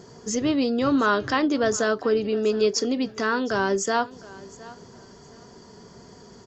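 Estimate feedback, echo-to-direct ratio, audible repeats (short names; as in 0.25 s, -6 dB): 24%, -20.0 dB, 2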